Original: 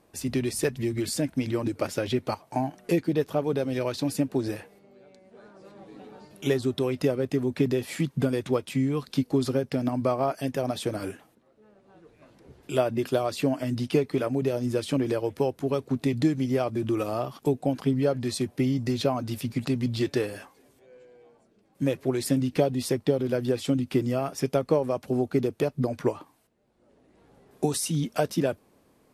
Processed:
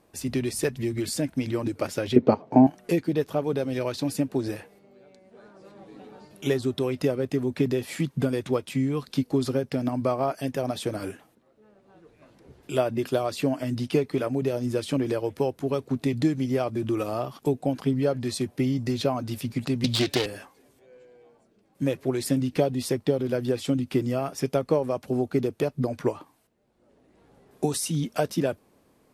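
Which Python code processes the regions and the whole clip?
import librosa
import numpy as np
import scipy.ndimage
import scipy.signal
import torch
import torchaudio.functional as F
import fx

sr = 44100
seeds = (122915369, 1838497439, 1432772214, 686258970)

y = fx.chain(x, sr, fx.air_absorb(metres=160.0),
    fx.small_body(hz=(240.0, 420.0), ring_ms=20, db=15), at=(2.16, 2.67))
y = fx.chain(y, sr, fx.self_delay(depth_ms=0.27),
    fx.peak_eq(hz=4000.0, db=12.5, octaves=1.6),
    fx.band_squash(depth_pct=100), at=(19.84, 20.26))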